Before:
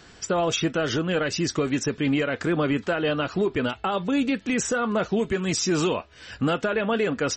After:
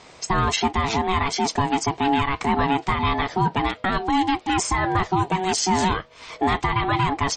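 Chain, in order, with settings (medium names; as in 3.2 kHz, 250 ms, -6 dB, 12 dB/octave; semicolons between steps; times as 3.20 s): ring modulator 560 Hz; trim +5.5 dB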